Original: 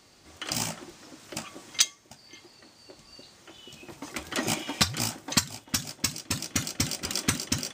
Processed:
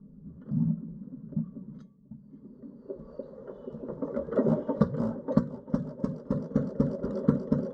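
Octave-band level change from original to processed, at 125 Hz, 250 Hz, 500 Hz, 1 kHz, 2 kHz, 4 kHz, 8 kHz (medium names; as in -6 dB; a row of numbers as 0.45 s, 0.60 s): +5.0 dB, +8.0 dB, +10.0 dB, -5.5 dB, -19.0 dB, under -30 dB, under -40 dB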